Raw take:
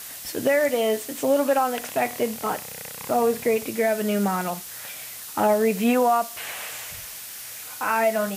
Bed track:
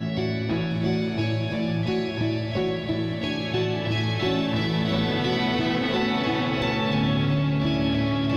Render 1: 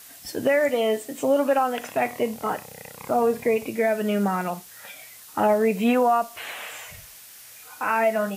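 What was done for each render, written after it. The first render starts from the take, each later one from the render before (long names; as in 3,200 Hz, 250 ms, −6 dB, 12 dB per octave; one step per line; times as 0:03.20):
noise reduction from a noise print 8 dB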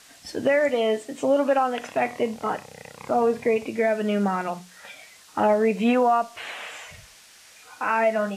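low-pass filter 6,900 Hz 12 dB per octave
mains-hum notches 60/120/180 Hz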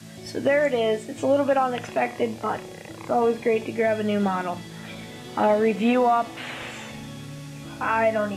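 mix in bed track −15.5 dB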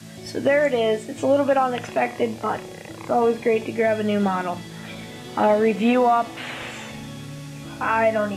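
level +2 dB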